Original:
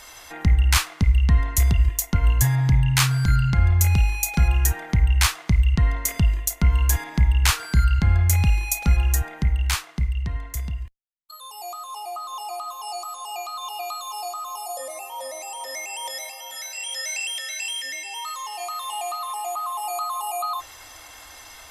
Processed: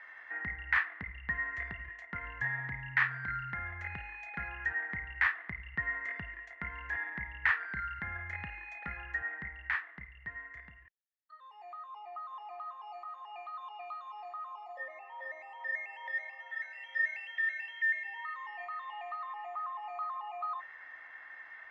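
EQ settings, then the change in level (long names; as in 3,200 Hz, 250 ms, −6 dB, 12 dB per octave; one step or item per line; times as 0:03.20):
high-pass filter 580 Hz 6 dB per octave
transistor ladder low-pass 1,900 Hz, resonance 85%
0.0 dB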